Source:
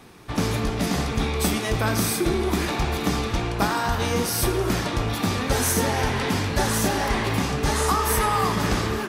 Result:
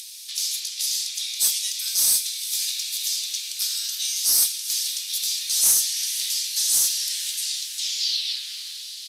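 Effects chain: tape stop at the end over 2.10 s; inverse Chebyshev high-pass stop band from 700 Hz, stop band 80 dB; diffused feedback echo 0.48 s, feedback 60%, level -15 dB; in parallel at +1 dB: upward compressor, threshold -34 dBFS; on the sum: soft clip -16 dBFS, distortion -16 dB; downsampling 32000 Hz; gain +4.5 dB

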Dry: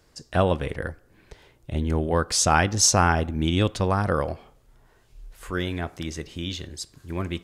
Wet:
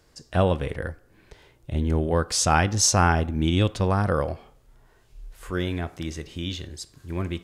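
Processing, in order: harmonic-percussive split percussive -5 dB; gain +2 dB

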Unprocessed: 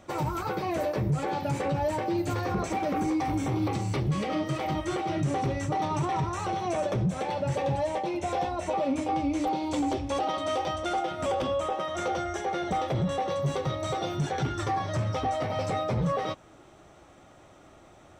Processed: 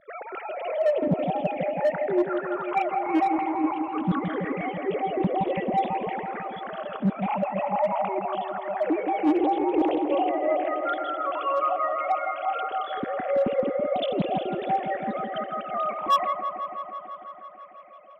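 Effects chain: sine-wave speech; phaser stages 8, 0.23 Hz, lowest notch 460–1500 Hz; in parallel at -3 dB: wavefolder -25 dBFS; on the sum: dark delay 0.165 s, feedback 78%, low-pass 1700 Hz, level -7 dB; Doppler distortion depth 0.22 ms; gain +3 dB

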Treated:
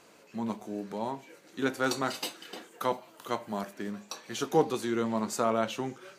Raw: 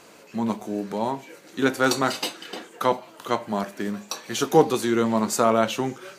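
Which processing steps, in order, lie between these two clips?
high shelf 10000 Hz -2 dB, from 2.14 s +7 dB, from 3.73 s -5 dB; gain -8 dB

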